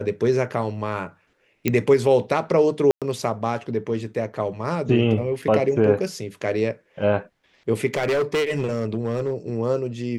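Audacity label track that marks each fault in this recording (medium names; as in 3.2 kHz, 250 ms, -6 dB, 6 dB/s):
1.680000	1.680000	pop -6 dBFS
2.910000	3.020000	dropout 107 ms
5.420000	5.420000	dropout 4.5 ms
7.940000	9.340000	clipped -18 dBFS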